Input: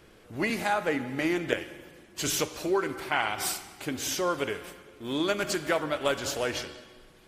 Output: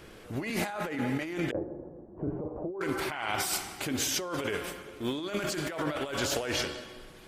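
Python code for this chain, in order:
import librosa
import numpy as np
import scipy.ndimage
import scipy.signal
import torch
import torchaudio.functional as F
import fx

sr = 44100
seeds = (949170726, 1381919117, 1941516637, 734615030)

y = fx.cheby2_lowpass(x, sr, hz=3500.0, order=4, stop_db=70, at=(1.51, 2.81))
y = fx.over_compress(y, sr, threshold_db=-34.0, ratio=-1.0)
y = y * 10.0 ** (1.5 / 20.0)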